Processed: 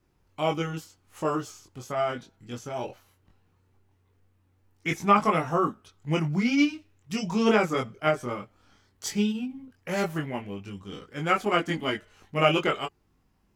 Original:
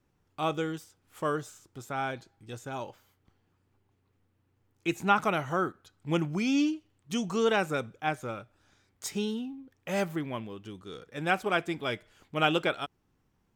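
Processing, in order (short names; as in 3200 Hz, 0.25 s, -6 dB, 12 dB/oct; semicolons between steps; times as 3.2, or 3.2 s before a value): chorus voices 4, 0.16 Hz, delay 22 ms, depth 2.8 ms; formant shift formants -2 st; gain +7 dB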